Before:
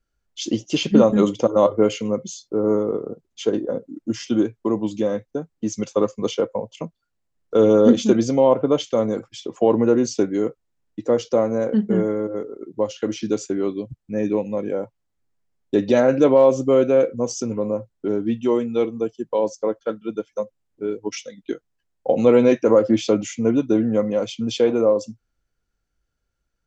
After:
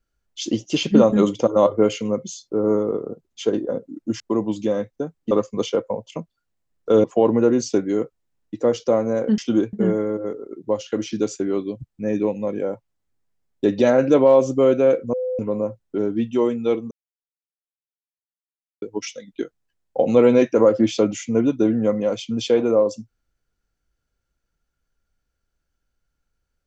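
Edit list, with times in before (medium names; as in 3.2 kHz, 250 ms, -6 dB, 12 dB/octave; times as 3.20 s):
4.20–4.55 s: move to 11.83 s
5.66–5.96 s: delete
7.69–9.49 s: delete
17.23–17.49 s: bleep 508 Hz -21.5 dBFS
19.01–20.92 s: mute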